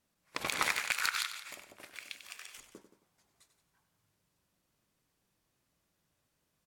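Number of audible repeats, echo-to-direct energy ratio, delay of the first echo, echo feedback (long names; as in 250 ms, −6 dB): 3, −9.0 dB, 95 ms, repeats not evenly spaced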